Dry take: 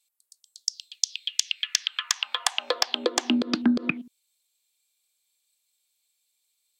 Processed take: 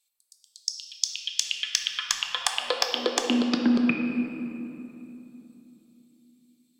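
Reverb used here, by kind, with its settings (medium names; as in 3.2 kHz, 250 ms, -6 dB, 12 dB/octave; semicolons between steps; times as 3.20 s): simulated room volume 140 m³, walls hard, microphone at 0.32 m; trim -1.5 dB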